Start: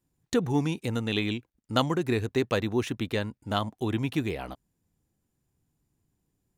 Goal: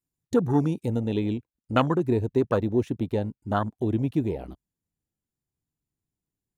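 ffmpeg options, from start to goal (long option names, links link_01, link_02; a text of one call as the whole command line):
ffmpeg -i in.wav -af "afwtdn=0.0316,asetnsamples=nb_out_samples=441:pad=0,asendcmd='0.93 highshelf g 3',highshelf=frequency=5200:gain=8.5,volume=3.5dB" out.wav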